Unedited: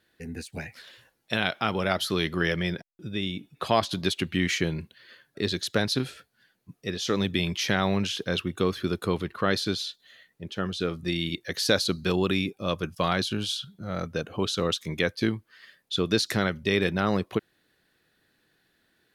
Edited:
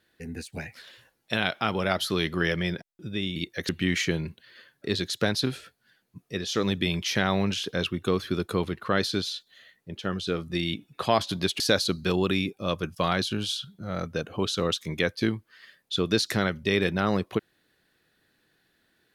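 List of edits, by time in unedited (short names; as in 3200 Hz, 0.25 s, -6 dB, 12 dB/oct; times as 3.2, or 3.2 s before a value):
3.36–4.22 swap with 11.27–11.6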